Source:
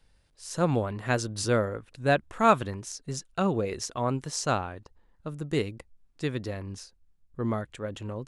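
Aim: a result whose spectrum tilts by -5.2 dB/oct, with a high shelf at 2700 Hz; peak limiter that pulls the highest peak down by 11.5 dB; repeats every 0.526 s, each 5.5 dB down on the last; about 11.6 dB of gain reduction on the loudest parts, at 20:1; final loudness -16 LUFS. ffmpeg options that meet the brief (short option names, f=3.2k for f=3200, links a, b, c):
-af "highshelf=f=2.7k:g=-5,acompressor=threshold=-26dB:ratio=20,alimiter=level_in=5dB:limit=-24dB:level=0:latency=1,volume=-5dB,aecho=1:1:526|1052|1578|2104|2630|3156|3682:0.531|0.281|0.149|0.079|0.0419|0.0222|0.0118,volume=22.5dB"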